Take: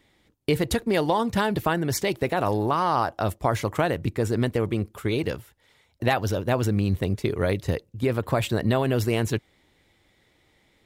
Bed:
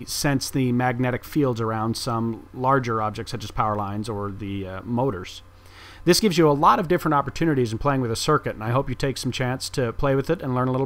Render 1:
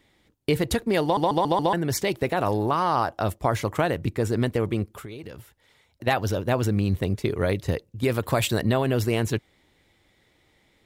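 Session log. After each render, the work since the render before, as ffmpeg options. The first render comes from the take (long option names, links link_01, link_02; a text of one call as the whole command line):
ffmpeg -i in.wav -filter_complex "[0:a]asplit=3[link_01][link_02][link_03];[link_01]afade=type=out:start_time=4.84:duration=0.02[link_04];[link_02]acompressor=threshold=-34dB:ratio=16:attack=3.2:release=140:knee=1:detection=peak,afade=type=in:start_time=4.84:duration=0.02,afade=type=out:start_time=6.06:duration=0.02[link_05];[link_03]afade=type=in:start_time=6.06:duration=0.02[link_06];[link_04][link_05][link_06]amix=inputs=3:normalize=0,asettb=1/sr,asplit=3[link_07][link_08][link_09];[link_07]atrim=end=8.034[link_10];[link_08]atrim=start=8.03:end=8.62,asetpts=PTS-STARTPTS,afade=type=in:duration=0.004:curve=qsin,afade=type=out:start_time=0.586:duration=0.004:curve=qsin,highshelf=frequency=2900:gain=8.5[link_11];[link_09]atrim=start=8.616[link_12];[link_10][link_11]acrossfade=duration=0.004:curve1=hsin:curve2=qsin[link_13];[link_13][link_12]acrossfade=duration=0.004:curve1=qsin:curve2=hsin,asplit=6[link_14][link_15][link_16][link_17][link_18][link_19];[link_14]atrim=end=1.172[link_20];[link_15]atrim=start=1.028:end=1.172[link_21];[link_16]atrim=start=1.028:end=1.172[link_22];[link_17]atrim=start=1.028:end=1.172[link_23];[link_18]atrim=start=1.028:end=1.172[link_24];[link_19]atrim=start=1.728[link_25];[link_20][link_21]acrossfade=duration=0.004:curve1=hsin:curve2=hsin[link_26];[link_26][link_22]acrossfade=duration=0.004:curve1=hsin:curve2=hsin[link_27];[link_27][link_23]acrossfade=duration=0.004:curve1=hsin:curve2=hsin[link_28];[link_28][link_24]acrossfade=duration=0.004:curve1=hsin:curve2=hsin[link_29];[link_29][link_25]acrossfade=duration=0.004:curve1=hsin:curve2=hsin" out.wav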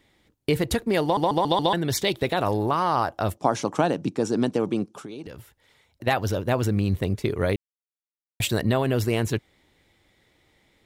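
ffmpeg -i in.wav -filter_complex "[0:a]asettb=1/sr,asplit=3[link_01][link_02][link_03];[link_01]atrim=end=1.454[link_04];[link_02]atrim=start=1.45:end=2.41,asetpts=PTS-STARTPTS,afade=type=in:duration=0.004:curve=qsin,afade=type=out:start_time=0.956:duration=0.004:curve=qsin,equalizer=frequency=3600:width_type=o:width=0.44:gain=11[link_05];[link_03]atrim=start=2.406[link_06];[link_04][link_05]acrossfade=duration=0.004:curve1=hsin:curve2=qsin[link_07];[link_07][link_06]acrossfade=duration=0.004:curve1=qsin:curve2=hsin,asettb=1/sr,asplit=3[link_08][link_09][link_10];[link_08]atrim=end=3.374[link_11];[link_09]atrim=start=3.37:end=5.27,asetpts=PTS-STARTPTS,afade=type=in:duration=0.004:curve=qsin,afade=type=out:start_time=1.896:duration=0.004:curve=qsin,highpass=frequency=150:width=0.5412,highpass=frequency=150:width=1.3066,equalizer=frequency=180:width_type=q:width=4:gain=4,equalizer=frequency=280:width_type=q:width=4:gain=6,equalizer=frequency=820:width_type=q:width=4:gain=5,equalizer=frequency=2000:width_type=q:width=4:gain=-10,equalizer=frequency=5800:width_type=q:width=4:gain=8,lowpass=frequency=9600:width=0.5412,lowpass=frequency=9600:width=1.3066[link_12];[link_10]atrim=start=5.266[link_13];[link_11][link_12]acrossfade=duration=0.004:curve1=hsin:curve2=qsin[link_14];[link_14][link_13]acrossfade=duration=0.004:curve1=qsin:curve2=hsin,asplit=3[link_15][link_16][link_17];[link_15]atrim=end=7.56,asetpts=PTS-STARTPTS,afade=type=out:start_time=7.556:duration=0.004:curve=hsin[link_18];[link_16]atrim=start=7.56:end=8.4,asetpts=PTS-STARTPTS,volume=0[link_19];[link_17]atrim=start=8.4,asetpts=PTS-STARTPTS,afade=type=in:duration=0.004:curve=hsin[link_20];[link_18][link_19][link_20]concat=n=3:v=0:a=1" out.wav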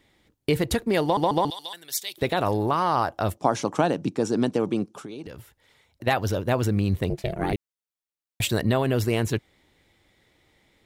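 ffmpeg -i in.wav -filter_complex "[0:a]asettb=1/sr,asplit=3[link_01][link_02][link_03];[link_01]atrim=end=1.504[link_04];[link_02]atrim=start=1.5:end=2.18,asetpts=PTS-STARTPTS,afade=type=in:duration=0.004:curve=qsin,afade=type=out:start_time=0.676:duration=0.004:curve=qsin,aderivative[link_05];[link_03]atrim=start=2.176[link_06];[link_04][link_05]acrossfade=duration=0.004:curve1=hsin:curve2=qsin[link_07];[link_07][link_06]acrossfade=duration=0.004:curve1=qsin:curve2=hsin,asettb=1/sr,asplit=3[link_08][link_09][link_10];[link_08]atrim=end=7.104[link_11];[link_09]atrim=start=7.1:end=7.53,asetpts=PTS-STARTPTS,afade=type=in:duration=0.004:curve=qsin,afade=type=out:start_time=0.426:duration=0.004:curve=qsin,aeval=exprs='val(0)*sin(2*PI*250*n/s)':channel_layout=same[link_12];[link_10]atrim=start=7.526[link_13];[link_11][link_12]acrossfade=duration=0.004:curve1=hsin:curve2=qsin[link_14];[link_14][link_13]acrossfade=duration=0.004:curve1=qsin:curve2=hsin" out.wav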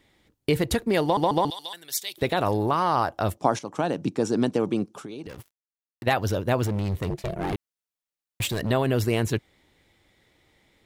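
ffmpeg -i in.wav -filter_complex "[0:a]asettb=1/sr,asplit=3[link_01][link_02][link_03];[link_01]atrim=end=5.294[link_04];[link_02]atrim=start=5.29:end=6.04,asetpts=PTS-STARTPTS,afade=type=in:duration=0.004:curve=qsin,afade=type=out:start_time=0.746:duration=0.004:curve=qsin,acrusher=bits=6:mix=0:aa=0.5[link_05];[link_03]atrim=start=6.036[link_06];[link_04][link_05]acrossfade=duration=0.004:curve1=hsin:curve2=qsin[link_07];[link_07][link_06]acrossfade=duration=0.004:curve1=qsin:curve2=hsin,asettb=1/sr,asplit=3[link_08][link_09][link_10];[link_08]atrim=end=6.634[link_11];[link_09]atrim=start=6.63:end=8.71,asetpts=PTS-STARTPTS,afade=type=in:duration=0.004:curve=qsin,afade=type=out:start_time=2.076:duration=0.004:curve=qsin,asoftclip=type=hard:threshold=-23dB[link_12];[link_10]atrim=start=8.706[link_13];[link_11][link_12]acrossfade=duration=0.004:curve1=hsin:curve2=qsin[link_14];[link_14][link_13]acrossfade=duration=0.004:curve1=qsin:curve2=hsin,asplit=2[link_15][link_16];[link_15]atrim=end=3.59,asetpts=PTS-STARTPTS,afade=type=out:start_time=3.586:duration=0.004:curve=hsin:silence=0.237137[link_17];[link_16]atrim=start=3.59,asetpts=PTS-STARTPTS,afade=type=in:duration=0.47:silence=0.237137[link_18];[link_17][link_18]concat=n=2:v=0:a=1" out.wav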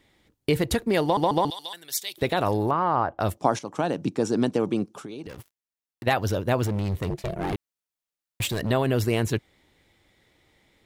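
ffmpeg -i in.wav -filter_complex "[0:a]asettb=1/sr,asplit=3[link_01][link_02][link_03];[link_01]atrim=end=2.714[link_04];[link_02]atrim=start=2.71:end=3.2,asetpts=PTS-STARTPTS,afade=type=in:duration=0.004:curve=qsin,afade=type=out:start_time=0.486:duration=0.004:curve=qsin,lowpass=1800[link_05];[link_03]atrim=start=3.196[link_06];[link_04][link_05]acrossfade=duration=0.004:curve1=hsin:curve2=qsin[link_07];[link_07][link_06]acrossfade=duration=0.004:curve1=qsin:curve2=hsin" out.wav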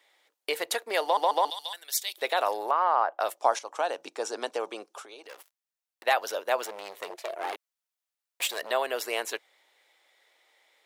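ffmpeg -i in.wav -af "highpass=frequency=540:width=0.5412,highpass=frequency=540:width=1.3066" out.wav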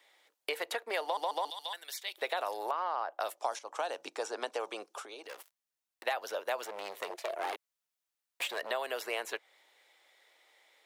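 ffmpeg -i in.wav -filter_complex "[0:a]acrossover=split=450|3100[link_01][link_02][link_03];[link_01]acompressor=threshold=-48dB:ratio=4[link_04];[link_02]acompressor=threshold=-33dB:ratio=4[link_05];[link_03]acompressor=threshold=-46dB:ratio=4[link_06];[link_04][link_05][link_06]amix=inputs=3:normalize=0" out.wav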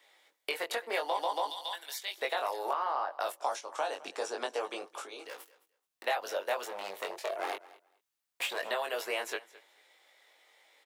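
ffmpeg -i in.wav -filter_complex "[0:a]asplit=2[link_01][link_02];[link_02]adelay=21,volume=-3.5dB[link_03];[link_01][link_03]amix=inputs=2:normalize=0,aecho=1:1:214|428:0.1|0.016" out.wav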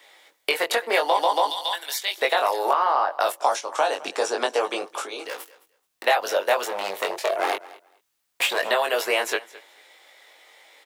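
ffmpeg -i in.wav -af "volume=11.5dB" out.wav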